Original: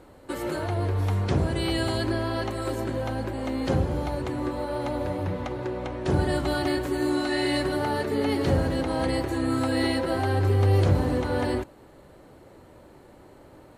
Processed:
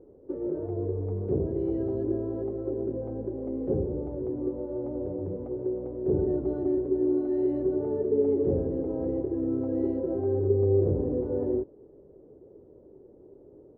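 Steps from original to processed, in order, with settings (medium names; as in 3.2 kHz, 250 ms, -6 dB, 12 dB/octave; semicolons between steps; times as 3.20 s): resonant low-pass 420 Hz, resonance Q 4.9; trim -8 dB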